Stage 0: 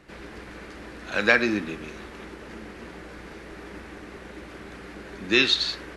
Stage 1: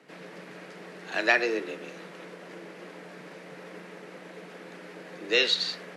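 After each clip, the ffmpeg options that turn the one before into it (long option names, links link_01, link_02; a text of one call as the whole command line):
ffmpeg -i in.wav -af "afreqshift=120,volume=-3.5dB" out.wav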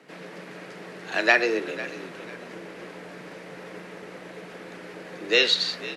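ffmpeg -i in.wav -filter_complex "[0:a]asplit=4[link_01][link_02][link_03][link_04];[link_02]adelay=497,afreqshift=-54,volume=-16dB[link_05];[link_03]adelay=994,afreqshift=-108,volume=-25.4dB[link_06];[link_04]adelay=1491,afreqshift=-162,volume=-34.7dB[link_07];[link_01][link_05][link_06][link_07]amix=inputs=4:normalize=0,volume=3.5dB" out.wav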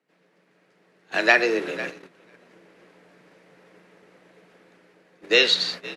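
ffmpeg -i in.wav -af "agate=range=-22dB:threshold=-34dB:ratio=16:detection=peak,dynaudnorm=framelen=190:gausssize=7:maxgain=9.5dB,volume=-1dB" out.wav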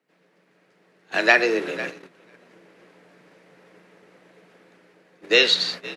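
ffmpeg -i in.wav -af "highpass=60,volume=1dB" out.wav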